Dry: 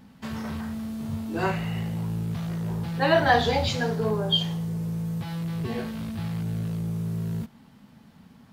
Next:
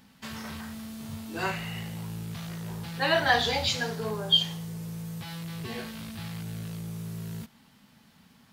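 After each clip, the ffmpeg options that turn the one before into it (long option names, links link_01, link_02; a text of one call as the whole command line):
ffmpeg -i in.wav -af "tiltshelf=frequency=1300:gain=-6,volume=-2dB" out.wav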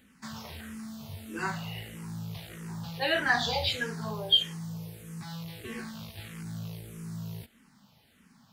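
ffmpeg -i in.wav -filter_complex "[0:a]asplit=2[link_01][link_02];[link_02]afreqshift=-1.6[link_03];[link_01][link_03]amix=inputs=2:normalize=1" out.wav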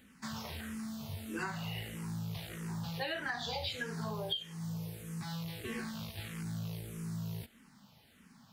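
ffmpeg -i in.wav -af "acompressor=threshold=-34dB:ratio=12" out.wav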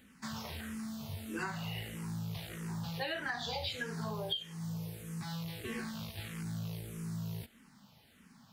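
ffmpeg -i in.wav -af anull out.wav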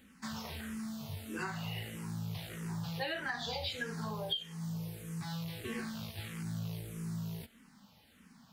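ffmpeg -i in.wav -af "flanger=delay=3.7:depth=4.8:regen=-58:speed=0.25:shape=sinusoidal,volume=4dB" out.wav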